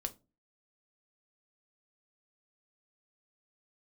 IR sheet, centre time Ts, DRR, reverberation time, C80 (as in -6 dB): 5 ms, 7.0 dB, not exponential, 27.0 dB